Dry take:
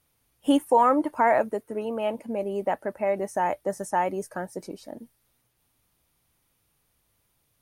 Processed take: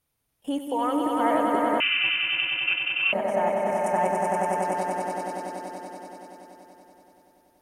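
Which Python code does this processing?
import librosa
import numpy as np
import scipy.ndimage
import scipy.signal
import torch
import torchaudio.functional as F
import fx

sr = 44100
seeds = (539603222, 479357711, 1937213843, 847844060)

y = fx.level_steps(x, sr, step_db=13)
y = fx.echo_swell(y, sr, ms=95, loudest=5, wet_db=-4)
y = fx.freq_invert(y, sr, carrier_hz=3300, at=(1.8, 3.13))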